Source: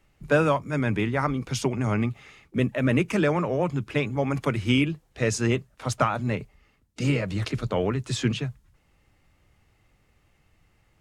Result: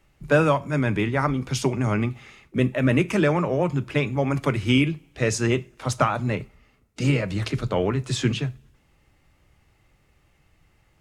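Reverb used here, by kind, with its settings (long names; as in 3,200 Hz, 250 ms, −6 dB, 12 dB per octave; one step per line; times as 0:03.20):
coupled-rooms reverb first 0.3 s, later 1.6 s, from −27 dB, DRR 13.5 dB
level +2 dB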